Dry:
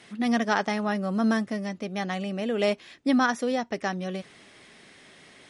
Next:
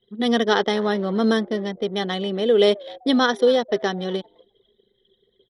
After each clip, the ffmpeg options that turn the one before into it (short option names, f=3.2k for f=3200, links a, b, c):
-filter_complex "[0:a]superequalizer=7b=3.16:12b=0.562:13b=3.16:15b=0.501,asplit=4[a][b][c][d];[b]adelay=257,afreqshift=130,volume=-21.5dB[e];[c]adelay=514,afreqshift=260,volume=-28.4dB[f];[d]adelay=771,afreqshift=390,volume=-35.4dB[g];[a][e][f][g]amix=inputs=4:normalize=0,anlmdn=1.58,volume=3dB"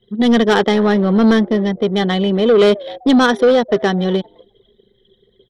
-af "bass=f=250:g=6,treble=f=4k:g=-6,asoftclip=type=tanh:threshold=-14dB,volume=8dB"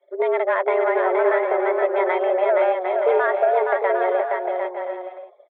-filter_complex "[0:a]highpass=f=250:t=q:w=0.5412,highpass=f=250:t=q:w=1.307,lowpass=f=2.2k:t=q:w=0.5176,lowpass=f=2.2k:t=q:w=0.7071,lowpass=f=2.2k:t=q:w=1.932,afreqshift=180,acompressor=threshold=-19dB:ratio=3,asplit=2[a][b];[b]aecho=0:1:470|752|921.2|1023|1084:0.631|0.398|0.251|0.158|0.1[c];[a][c]amix=inputs=2:normalize=0"